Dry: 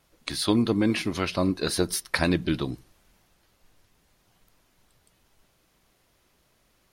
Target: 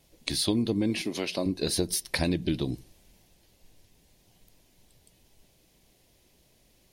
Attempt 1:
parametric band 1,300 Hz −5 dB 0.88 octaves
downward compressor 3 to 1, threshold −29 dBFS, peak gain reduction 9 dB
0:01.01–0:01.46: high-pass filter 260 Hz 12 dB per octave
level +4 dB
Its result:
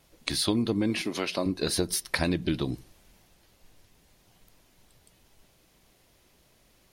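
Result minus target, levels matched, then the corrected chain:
1,000 Hz band +3.5 dB
parametric band 1,300 Hz −15 dB 0.88 octaves
downward compressor 3 to 1, threshold −29 dBFS, peak gain reduction 8.5 dB
0:01.01–0:01.46: high-pass filter 260 Hz 12 dB per octave
level +4 dB

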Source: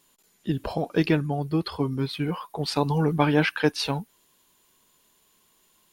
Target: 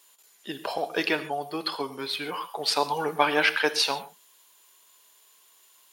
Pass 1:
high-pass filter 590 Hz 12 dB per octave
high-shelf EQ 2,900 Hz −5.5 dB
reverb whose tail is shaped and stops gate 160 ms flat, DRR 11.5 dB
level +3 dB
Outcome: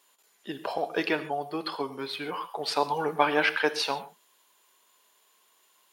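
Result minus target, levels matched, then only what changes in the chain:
8,000 Hz band −5.0 dB
change: high-shelf EQ 2,900 Hz +3 dB

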